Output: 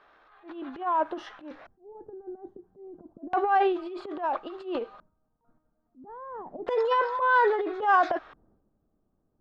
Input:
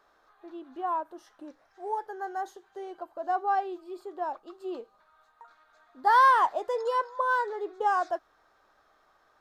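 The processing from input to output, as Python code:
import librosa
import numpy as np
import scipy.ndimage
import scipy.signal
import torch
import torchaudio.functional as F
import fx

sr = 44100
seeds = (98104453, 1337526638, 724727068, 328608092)

y = fx.transient(x, sr, attack_db=-11, sustain_db=10)
y = fx.filter_lfo_lowpass(y, sr, shape='square', hz=0.3, low_hz=210.0, high_hz=2800.0, q=1.7)
y = y * librosa.db_to_amplitude(4.5)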